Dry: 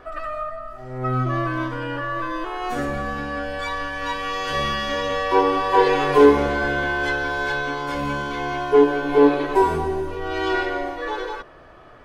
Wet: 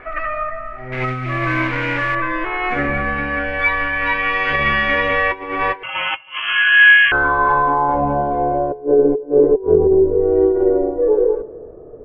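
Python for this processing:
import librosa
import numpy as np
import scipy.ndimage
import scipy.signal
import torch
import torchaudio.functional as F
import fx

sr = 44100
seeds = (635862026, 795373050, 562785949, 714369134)

y = fx.delta_mod(x, sr, bps=64000, step_db=-24.5, at=(0.92, 2.15))
y = fx.low_shelf(y, sr, hz=300.0, db=4.0)
y = fx.hum_notches(y, sr, base_hz=60, count=5)
y = fx.over_compress(y, sr, threshold_db=-22.0, ratio=-0.5)
y = fx.filter_sweep_lowpass(y, sr, from_hz=2200.0, to_hz=450.0, start_s=6.22, end_s=9.01, q=6.8)
y = y + 10.0 ** (-23.0 / 20.0) * np.pad(y, (int(323 * sr / 1000.0), 0))[:len(y)]
y = fx.freq_invert(y, sr, carrier_hz=3200, at=(5.83, 7.12))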